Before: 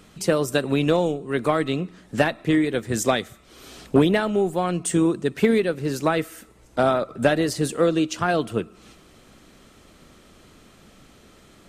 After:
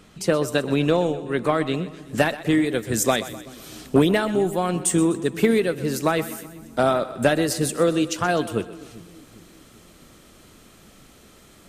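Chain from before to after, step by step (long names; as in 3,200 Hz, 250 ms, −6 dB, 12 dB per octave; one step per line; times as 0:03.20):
high-shelf EQ 8,600 Hz −3 dB, from 0:01.74 +10.5 dB
echo with a time of its own for lows and highs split 310 Hz, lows 396 ms, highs 126 ms, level −15 dB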